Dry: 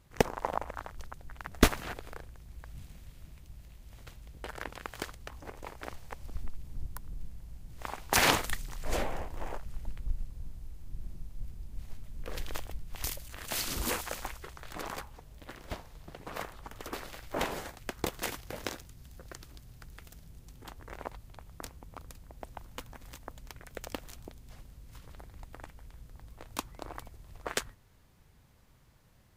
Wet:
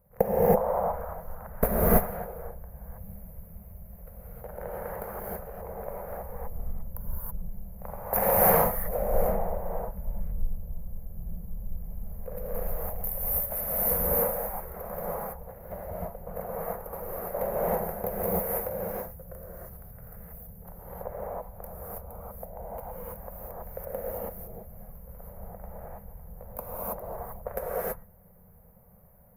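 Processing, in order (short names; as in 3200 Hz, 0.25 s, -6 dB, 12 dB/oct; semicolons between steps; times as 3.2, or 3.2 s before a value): EQ curve 130 Hz 0 dB, 200 Hz +8 dB, 290 Hz -18 dB, 510 Hz +13 dB, 1100 Hz -3 dB, 2200 Hz -11 dB, 3300 Hz -28 dB, 5300 Hz -23 dB, 7800 Hz -22 dB, 12000 Hz +12 dB; non-linear reverb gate 0.35 s rising, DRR -8 dB; gain -5 dB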